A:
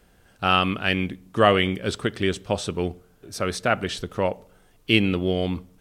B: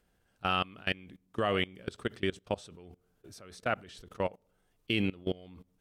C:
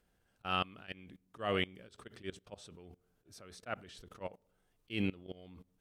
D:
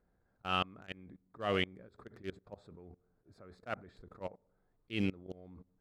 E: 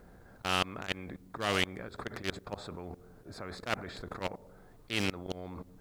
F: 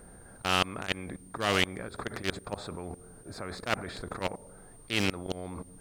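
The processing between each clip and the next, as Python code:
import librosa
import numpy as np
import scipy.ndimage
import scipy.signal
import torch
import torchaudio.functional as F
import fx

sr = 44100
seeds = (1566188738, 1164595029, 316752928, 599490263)

y1 = fx.level_steps(x, sr, step_db=22)
y1 = y1 * librosa.db_to_amplitude(-6.5)
y2 = fx.auto_swell(y1, sr, attack_ms=119.0)
y2 = y2 * librosa.db_to_amplitude(-3.0)
y3 = fx.wiener(y2, sr, points=15)
y3 = y3 * librosa.db_to_amplitude(1.0)
y4 = fx.spectral_comp(y3, sr, ratio=2.0)
y4 = y4 * librosa.db_to_amplitude(6.0)
y5 = y4 + 10.0 ** (-59.0 / 20.0) * np.sin(2.0 * np.pi * 8800.0 * np.arange(len(y4)) / sr)
y5 = y5 * librosa.db_to_amplitude(3.5)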